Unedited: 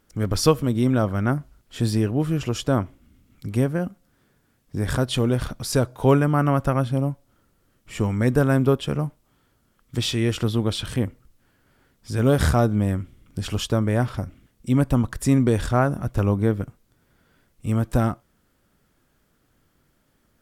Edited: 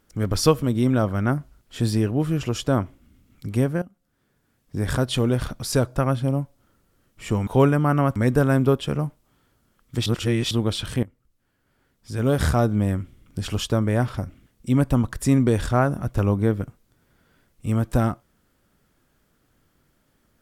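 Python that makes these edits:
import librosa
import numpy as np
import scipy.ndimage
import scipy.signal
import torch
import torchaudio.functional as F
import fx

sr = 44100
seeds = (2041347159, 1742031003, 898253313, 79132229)

y = fx.edit(x, sr, fx.fade_in_from(start_s=3.82, length_s=0.99, floor_db=-17.0),
    fx.move(start_s=5.96, length_s=0.69, to_s=8.16),
    fx.reverse_span(start_s=10.06, length_s=0.45),
    fx.fade_in_from(start_s=11.03, length_s=1.79, floor_db=-15.5), tone=tone)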